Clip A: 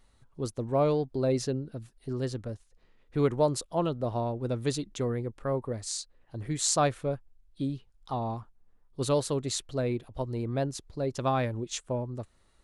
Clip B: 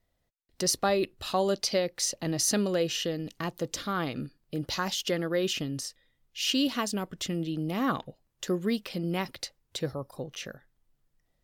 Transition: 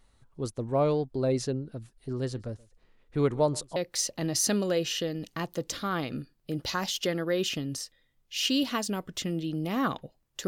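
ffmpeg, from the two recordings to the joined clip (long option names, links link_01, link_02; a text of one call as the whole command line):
ffmpeg -i cue0.wav -i cue1.wav -filter_complex "[0:a]asettb=1/sr,asplit=3[link_01][link_02][link_03];[link_01]atrim=end=1.864[link_04];[link_02]atrim=start=1.86:end=3.76,asetpts=PTS-STARTPTS,afade=type=in:duration=0.004:curve=qsin,afade=type=out:start_time=1.896:duration=0.004:curve=qsin,aecho=1:1:127:0.0668,atrim=end_sample=83790[link_05];[link_03]atrim=start=3.756[link_06];[link_04][link_05]acrossfade=duration=0.004:curve1=hsin:curve2=qsin[link_07];[link_07][link_06]acrossfade=duration=0.004:curve1=qsin:curve2=hsin,apad=whole_dur=10.47,atrim=end=10.47,atrim=end=3.762[link_08];[1:a]atrim=start=1.798:end=8.51[link_09];[link_08][link_09]acrossfade=duration=0.004:curve1=hsin:curve2=hsin" out.wav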